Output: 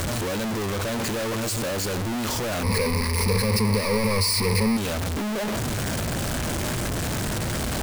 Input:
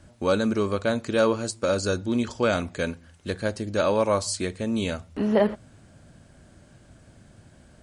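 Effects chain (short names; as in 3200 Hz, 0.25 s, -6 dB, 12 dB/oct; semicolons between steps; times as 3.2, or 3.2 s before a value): infinite clipping; 2.63–4.77 ripple EQ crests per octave 0.89, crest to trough 17 dB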